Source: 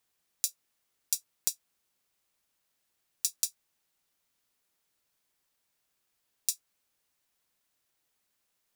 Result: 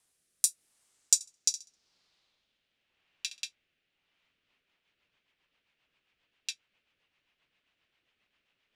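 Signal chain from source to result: low-pass sweep 9.8 kHz -> 2.8 kHz, 0.67–2.88 s; 1.14–3.45 s: flutter echo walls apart 11.3 m, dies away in 0.3 s; in parallel at -11 dB: hard clipper -13 dBFS, distortion -12 dB; on the sum: rotary cabinet horn 0.85 Hz, later 7.5 Hz, at 4.01 s; trim +4 dB

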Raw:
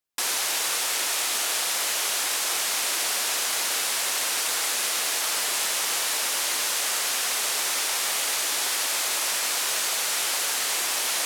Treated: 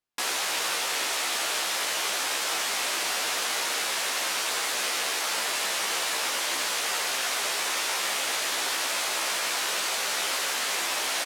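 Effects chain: treble shelf 6 kHz -10 dB; doubling 15 ms -4 dB

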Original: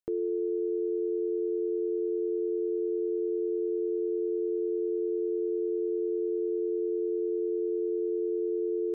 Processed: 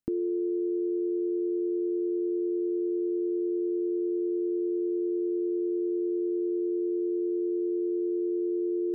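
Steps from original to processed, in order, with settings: resonant low shelf 350 Hz +7.5 dB, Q 3

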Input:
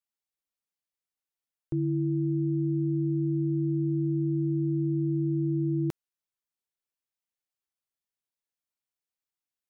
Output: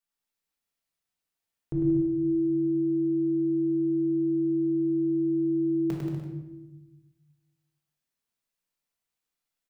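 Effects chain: bouncing-ball echo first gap 100 ms, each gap 0.8×, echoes 5; simulated room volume 450 m³, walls mixed, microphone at 1.6 m

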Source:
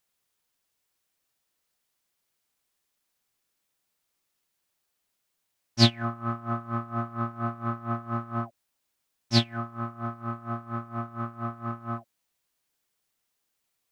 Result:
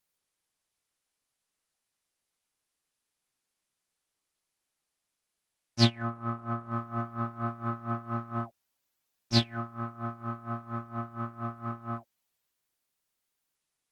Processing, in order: trim -2.5 dB; Opus 20 kbps 48 kHz

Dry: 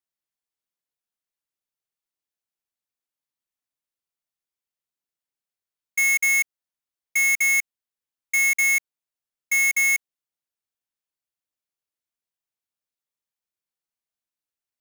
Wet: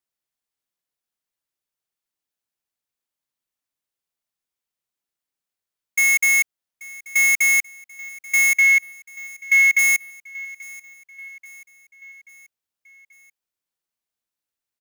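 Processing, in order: 8.57–9.79 s: FFT filter 100 Hz 0 dB, 360 Hz -23 dB, 1.8 kHz +5 dB, 8.8 kHz -10 dB; feedback delay 834 ms, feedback 56%, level -21 dB; trim +3 dB

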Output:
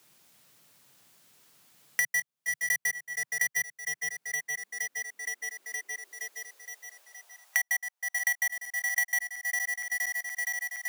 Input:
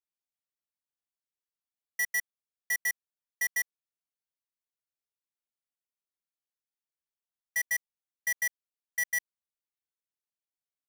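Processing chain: backward echo that repeats 234 ms, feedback 72%, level -11.5 dB; high-pass sweep 140 Hz -> 740 Hz, 3.94–7.46 s; three bands compressed up and down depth 100%; trim +3 dB

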